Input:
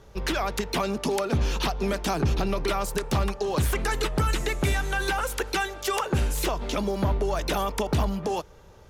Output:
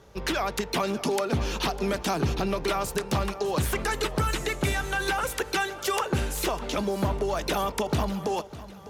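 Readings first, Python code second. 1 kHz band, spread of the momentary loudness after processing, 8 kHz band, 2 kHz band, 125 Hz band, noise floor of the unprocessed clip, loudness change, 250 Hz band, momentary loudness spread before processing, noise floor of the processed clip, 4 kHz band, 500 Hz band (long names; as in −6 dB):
0.0 dB, 2 LU, 0.0 dB, 0.0 dB, −3.0 dB, −49 dBFS, −1.0 dB, −0.5 dB, 3 LU, −42 dBFS, 0.0 dB, 0.0 dB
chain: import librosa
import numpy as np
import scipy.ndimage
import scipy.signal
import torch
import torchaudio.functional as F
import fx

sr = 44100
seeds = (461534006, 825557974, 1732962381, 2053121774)

y = fx.highpass(x, sr, hz=90.0, slope=6)
y = fx.echo_feedback(y, sr, ms=602, feedback_pct=38, wet_db=-16.0)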